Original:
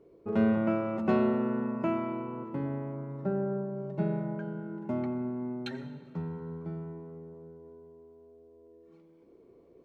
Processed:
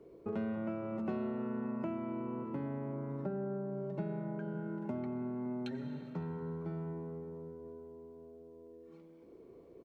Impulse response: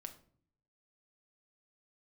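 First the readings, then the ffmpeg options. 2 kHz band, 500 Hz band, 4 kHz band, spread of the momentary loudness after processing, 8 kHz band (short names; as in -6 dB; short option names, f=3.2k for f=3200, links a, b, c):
-9.0 dB, -7.0 dB, -9.0 dB, 17 LU, n/a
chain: -filter_complex "[0:a]acrossover=split=140|670[a][b][c];[a]acompressor=threshold=-54dB:ratio=4[d];[b]acompressor=threshold=-41dB:ratio=4[e];[c]acompressor=threshold=-53dB:ratio=4[f];[d][e][f]amix=inputs=3:normalize=0,asplit=2[g][h];[h]adelay=561,lowpass=f=990:p=1,volume=-16dB,asplit=2[i][j];[j]adelay=561,lowpass=f=990:p=1,volume=0.41,asplit=2[k][l];[l]adelay=561,lowpass=f=990:p=1,volume=0.41,asplit=2[m][n];[n]adelay=561,lowpass=f=990:p=1,volume=0.41[o];[g][i][k][m][o]amix=inputs=5:normalize=0,volume=2dB"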